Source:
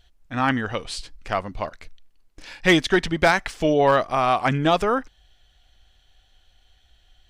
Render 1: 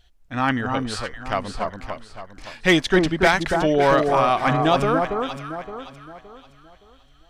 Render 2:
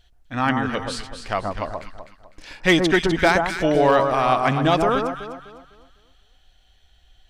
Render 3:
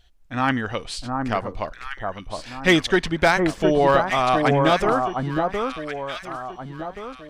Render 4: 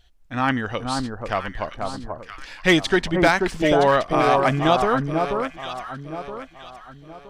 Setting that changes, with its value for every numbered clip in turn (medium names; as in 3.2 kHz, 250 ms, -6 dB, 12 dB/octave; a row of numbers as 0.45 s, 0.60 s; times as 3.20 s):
echo whose repeats swap between lows and highs, time: 284 ms, 126 ms, 714 ms, 485 ms